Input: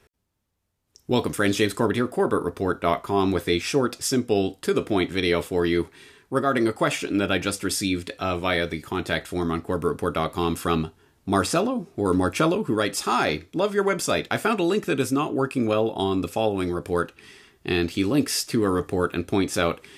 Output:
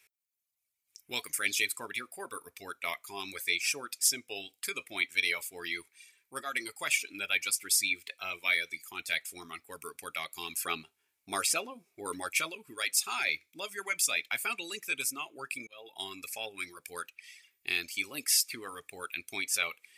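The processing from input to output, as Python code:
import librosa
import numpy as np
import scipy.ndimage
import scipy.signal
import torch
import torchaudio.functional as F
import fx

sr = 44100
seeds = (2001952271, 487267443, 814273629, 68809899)

y = fx.peak_eq(x, sr, hz=560.0, db=5.5, octaves=2.8, at=(10.64, 12.3))
y = fx.edit(y, sr, fx.fade_in_span(start_s=15.67, length_s=0.48, curve='qsin'), tone=tone)
y = scipy.signal.lfilter([1.0, -0.97], [1.0], y)
y = fx.dereverb_blind(y, sr, rt60_s=1.6)
y = fx.peak_eq(y, sr, hz=2300.0, db=13.5, octaves=0.36)
y = F.gain(torch.from_numpy(y), 1.5).numpy()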